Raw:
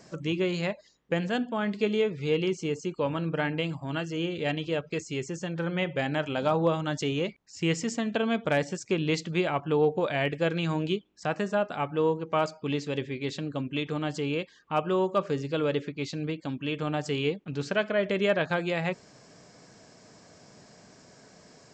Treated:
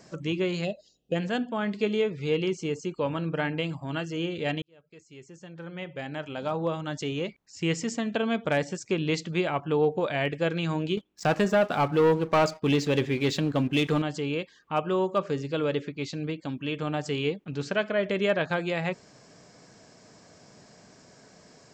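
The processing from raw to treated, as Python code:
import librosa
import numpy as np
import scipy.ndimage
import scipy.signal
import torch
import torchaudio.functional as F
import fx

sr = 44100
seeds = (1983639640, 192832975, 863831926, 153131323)

y = fx.spec_box(x, sr, start_s=0.65, length_s=0.5, low_hz=790.0, high_hz=2500.0, gain_db=-20)
y = fx.leveller(y, sr, passes=2, at=(10.97, 14.02))
y = fx.edit(y, sr, fx.fade_in_span(start_s=4.62, length_s=3.2), tone=tone)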